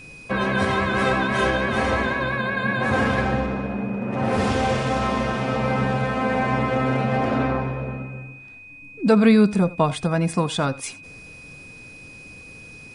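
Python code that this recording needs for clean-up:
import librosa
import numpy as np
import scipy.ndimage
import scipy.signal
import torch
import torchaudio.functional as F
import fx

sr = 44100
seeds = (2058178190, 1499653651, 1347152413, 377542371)

y = fx.notch(x, sr, hz=2500.0, q=30.0)
y = fx.fix_echo_inverse(y, sr, delay_ms=84, level_db=-19.5)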